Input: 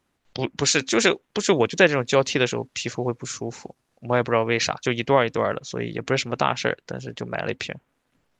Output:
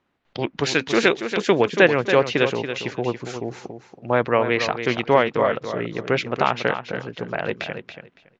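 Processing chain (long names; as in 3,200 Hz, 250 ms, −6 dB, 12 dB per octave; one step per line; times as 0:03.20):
low-pass filter 3,300 Hz 12 dB per octave
low-shelf EQ 90 Hz −9.5 dB
repeating echo 281 ms, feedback 18%, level −9 dB
level +2 dB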